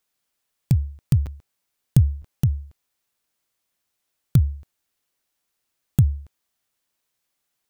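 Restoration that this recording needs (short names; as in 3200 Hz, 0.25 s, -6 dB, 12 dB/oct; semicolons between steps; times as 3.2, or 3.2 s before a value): interpolate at 1.26/2.22, 7.6 ms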